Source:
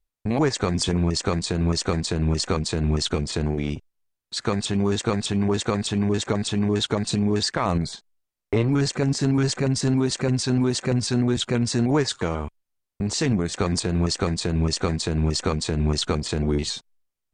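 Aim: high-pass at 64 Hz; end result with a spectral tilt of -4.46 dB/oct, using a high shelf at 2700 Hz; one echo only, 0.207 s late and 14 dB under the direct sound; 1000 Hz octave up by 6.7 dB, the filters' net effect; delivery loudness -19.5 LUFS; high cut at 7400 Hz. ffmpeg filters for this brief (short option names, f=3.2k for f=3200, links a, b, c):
-af "highpass=64,lowpass=7.4k,equalizer=f=1k:t=o:g=7.5,highshelf=f=2.7k:g=6,aecho=1:1:207:0.2,volume=2.5dB"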